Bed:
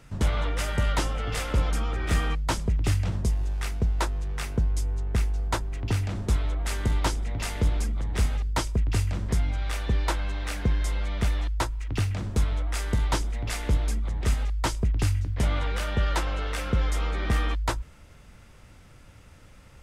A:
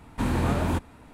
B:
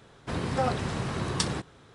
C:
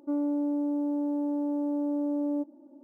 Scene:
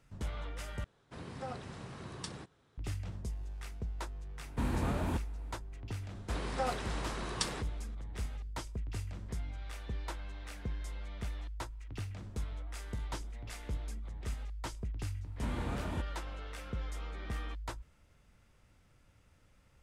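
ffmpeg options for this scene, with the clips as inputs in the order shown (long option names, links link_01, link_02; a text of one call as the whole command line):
ffmpeg -i bed.wav -i cue0.wav -i cue1.wav -filter_complex "[2:a]asplit=2[link_01][link_02];[1:a]asplit=2[link_03][link_04];[0:a]volume=-14.5dB[link_05];[link_02]highpass=frequency=360:poles=1[link_06];[link_04]lowpass=11000[link_07];[link_05]asplit=2[link_08][link_09];[link_08]atrim=end=0.844[link_10];[link_01]atrim=end=1.94,asetpts=PTS-STARTPTS,volume=-15dB[link_11];[link_09]atrim=start=2.776[link_12];[link_03]atrim=end=1.13,asetpts=PTS-STARTPTS,volume=-9dB,afade=type=in:duration=0.004:curve=hsin,afade=type=out:start_time=1.126:duration=0.004:curve=hsin,adelay=4390[link_13];[link_06]atrim=end=1.94,asetpts=PTS-STARTPTS,volume=-5.5dB,afade=type=in:duration=0.004:curve=hsin,afade=type=out:start_time=1.936:duration=0.004:curve=hsin,adelay=6010[link_14];[link_07]atrim=end=1.13,asetpts=PTS-STARTPTS,volume=-13.5dB,afade=type=in:duration=0.004:curve=hsin,afade=type=out:start_time=1.126:duration=0.004:curve=hsin,adelay=15230[link_15];[link_10][link_11]acrossfade=duration=0.004:curve1=hsin:curve2=hsin[link_16];[link_16][link_12]acrossfade=duration=0.004:curve1=hsin:curve2=hsin[link_17];[link_17][link_13][link_14][link_15]amix=inputs=4:normalize=0" out.wav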